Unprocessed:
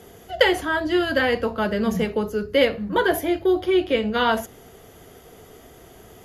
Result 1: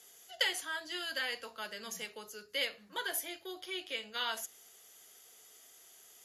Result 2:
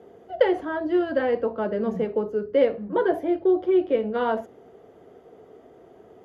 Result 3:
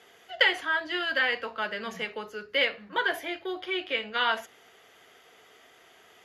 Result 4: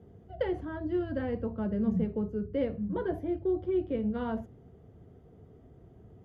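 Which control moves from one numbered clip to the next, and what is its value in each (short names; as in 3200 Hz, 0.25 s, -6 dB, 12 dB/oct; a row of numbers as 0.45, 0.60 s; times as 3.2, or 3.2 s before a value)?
band-pass, frequency: 7700, 450, 2300, 110 Hz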